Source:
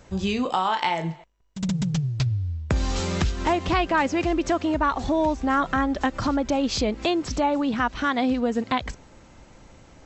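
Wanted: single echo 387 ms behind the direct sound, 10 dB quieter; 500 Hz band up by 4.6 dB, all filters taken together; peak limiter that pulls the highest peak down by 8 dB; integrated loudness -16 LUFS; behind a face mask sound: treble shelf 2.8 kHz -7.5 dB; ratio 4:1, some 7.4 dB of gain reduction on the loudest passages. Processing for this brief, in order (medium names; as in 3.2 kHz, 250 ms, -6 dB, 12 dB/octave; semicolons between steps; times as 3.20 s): peaking EQ 500 Hz +6.5 dB; compression 4:1, threshold -24 dBFS; peak limiter -19 dBFS; treble shelf 2.8 kHz -7.5 dB; delay 387 ms -10 dB; trim +13.5 dB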